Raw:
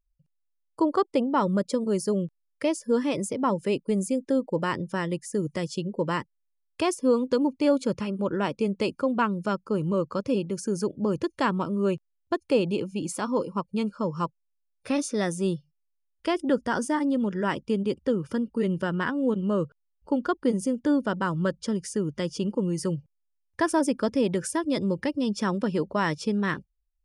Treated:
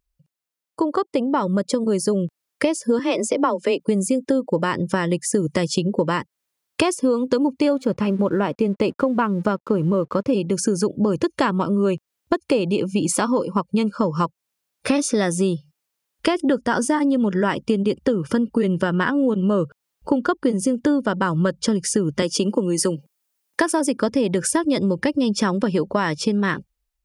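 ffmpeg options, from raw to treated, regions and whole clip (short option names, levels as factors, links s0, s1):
-filter_complex "[0:a]asettb=1/sr,asplit=3[s0][s1][s2];[s0]atrim=end=2.994[s3];[s1]atrim=start=2.99:end=3.8,asetpts=PTS-STARTPTS,afade=t=in:d=0.004:c=qsin,afade=t=out:st=0.806:d=0.004:c=qsin,afreqshift=22,highpass=330,lowpass=6600[s4];[s2]atrim=start=3.796[s5];[s3][s4]acrossfade=d=0.004:c1=hsin:c2=qsin[s6];[s6][s5]acrossfade=d=0.004:c1=qsin:c2=hsin,asettb=1/sr,asplit=3[s7][s8][s9];[s7]atrim=end=7.734[s10];[s8]atrim=start=7.73:end=10.33,asetpts=PTS-STARTPTS,afade=t=in:d=0.004:c=qsin,afade=t=out:st=2.596:d=0.004:c=qsin,highshelf=f=2600:g=-10,aeval=exprs='sgn(val(0))*max(abs(val(0))-0.00112,0)':c=same[s11];[s9]atrim=start=10.326[s12];[s10][s11]acrossfade=d=0.004:c1=hsin:c2=qsin[s13];[s13][s12]acrossfade=d=0.004:c1=qsin:c2=hsin,asettb=1/sr,asplit=3[s14][s15][s16];[s14]atrim=end=22.224[s17];[s15]atrim=start=22.22:end=23.97,asetpts=PTS-STARTPTS,afade=t=in:d=0.004:c=qsin,afade=t=out:st=1.746:d=0.004:c=qsin,highpass=f=200:w=0.5412,highpass=f=200:w=1.3066,highshelf=f=7500:g=7.5[s18];[s16]atrim=start=23.966[s19];[s17][s18]acrossfade=d=0.004:c1=hsin:c2=qsin[s20];[s20][s19]acrossfade=d=0.004:c1=qsin:c2=hsin,dynaudnorm=f=840:g=5:m=3.16,highpass=f=89:p=1,acompressor=threshold=0.0562:ratio=6,volume=2.51"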